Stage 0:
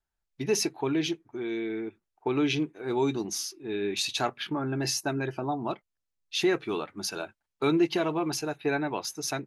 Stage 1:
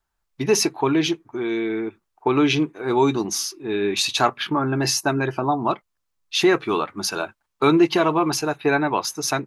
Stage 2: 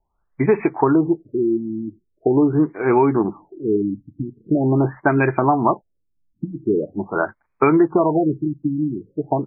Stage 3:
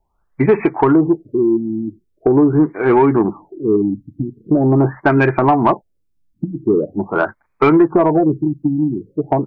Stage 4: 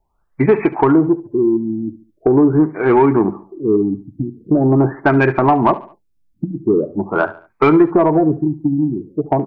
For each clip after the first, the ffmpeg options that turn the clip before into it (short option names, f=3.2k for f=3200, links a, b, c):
-af "equalizer=f=1.1k:t=o:w=0.64:g=7,volume=7.5dB"
-af "acompressor=threshold=-18dB:ratio=6,afftfilt=real='re*lt(b*sr/1024,310*pow(2600/310,0.5+0.5*sin(2*PI*0.43*pts/sr)))':imag='im*lt(b*sr/1024,310*pow(2600/310,0.5+0.5*sin(2*PI*0.43*pts/sr)))':win_size=1024:overlap=0.75,volume=7dB"
-af "acontrast=54,volume=-1dB"
-af "aecho=1:1:71|142|213:0.141|0.0565|0.0226"